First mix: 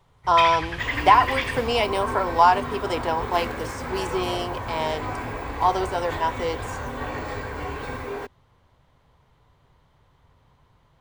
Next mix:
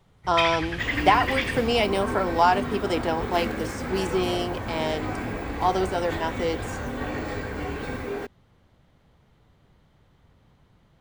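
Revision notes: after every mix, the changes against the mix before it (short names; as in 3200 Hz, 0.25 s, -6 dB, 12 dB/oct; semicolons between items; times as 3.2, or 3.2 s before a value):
master: add thirty-one-band EQ 200 Hz +11 dB, 315 Hz +5 dB, 1000 Hz -8 dB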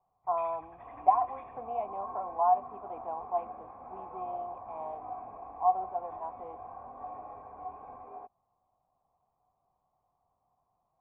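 master: add vocal tract filter a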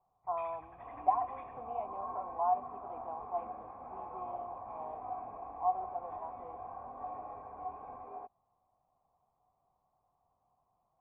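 speech -5.5 dB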